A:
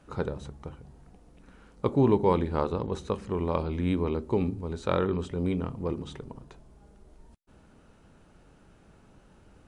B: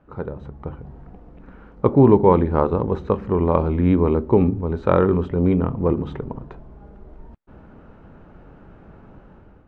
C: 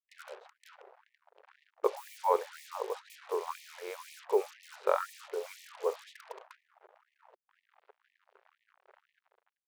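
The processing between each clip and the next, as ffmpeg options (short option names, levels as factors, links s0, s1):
-af "lowpass=1600,dynaudnorm=f=240:g=5:m=3.55,volume=1.12"
-af "acrusher=bits=5:mix=0:aa=0.5,afftfilt=real='re*gte(b*sr/1024,360*pow(1800/360,0.5+0.5*sin(2*PI*2*pts/sr)))':imag='im*gte(b*sr/1024,360*pow(1800/360,0.5+0.5*sin(2*PI*2*pts/sr)))':win_size=1024:overlap=0.75,volume=0.376"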